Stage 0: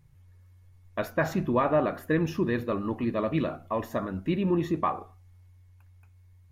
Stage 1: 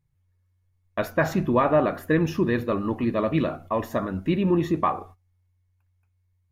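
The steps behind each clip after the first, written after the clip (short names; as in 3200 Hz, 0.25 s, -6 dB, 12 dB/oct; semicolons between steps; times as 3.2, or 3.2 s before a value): gate -48 dBFS, range -17 dB; gain +4 dB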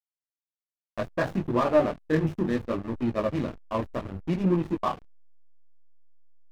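chorus voices 2, 0.67 Hz, delay 21 ms, depth 4.9 ms; backlash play -25.5 dBFS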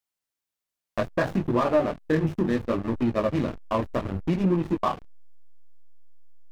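compressor 2:1, threshold -33 dBFS, peak gain reduction 10 dB; gain +8 dB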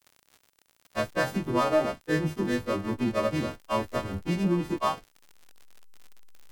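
frequency quantiser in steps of 2 st; crackle 77/s -38 dBFS; gain -2 dB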